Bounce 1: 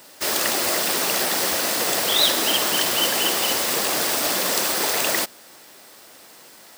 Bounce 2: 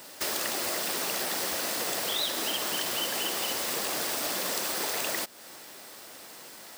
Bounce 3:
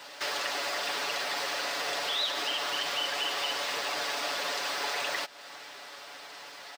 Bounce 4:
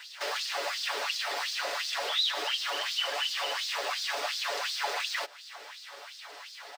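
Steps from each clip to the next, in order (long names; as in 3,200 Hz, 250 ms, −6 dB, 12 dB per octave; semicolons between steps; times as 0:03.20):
downward compressor 3 to 1, threshold −31 dBFS, peak gain reduction 13 dB
three-way crossover with the lows and the highs turned down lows −13 dB, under 530 Hz, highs −21 dB, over 5,400 Hz; comb filter 7 ms, depth 67%; in parallel at +1.5 dB: brickwall limiter −30 dBFS, peak gain reduction 10.5 dB; on the sum: level −3 dB
auto-filter high-pass sine 2.8 Hz 400–4,600 Hz; level −2.5 dB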